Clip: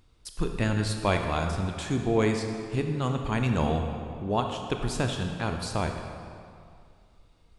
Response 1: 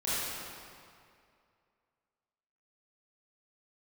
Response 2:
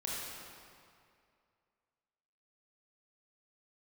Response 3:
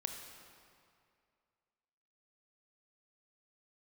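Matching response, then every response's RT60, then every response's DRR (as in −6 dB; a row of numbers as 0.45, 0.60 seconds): 3; 2.3, 2.3, 2.3 seconds; −12.0, −5.5, 4.0 decibels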